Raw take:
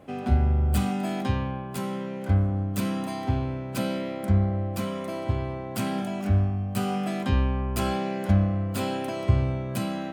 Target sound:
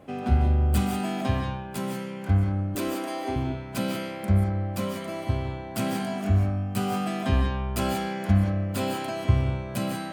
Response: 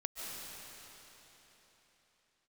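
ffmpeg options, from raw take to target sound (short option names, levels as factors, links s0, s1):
-filter_complex "[0:a]asettb=1/sr,asplit=3[s0][s1][s2];[s0]atrim=end=2.754[s3];[s1]atrim=start=2.75:end=3.36,asetpts=PTS-STARTPTS,afade=t=in:d=0.004:c=qsin,afade=t=out:st=0.606:d=0.004:c=qsin,lowshelf=f=230:t=q:w=3:g=-13.5[s4];[s2]atrim=start=3.356[s5];[s3][s4]acrossfade=d=0.004:c1=hsin:c2=qsin[s6];[s6][s5]acrossfade=d=0.004:c1=qsin:c2=hsin[s7];[1:a]atrim=start_sample=2205,afade=t=out:st=0.24:d=0.01,atrim=end_sample=11025[s8];[s7][s8]afir=irnorm=-1:irlink=0,volume=1.5"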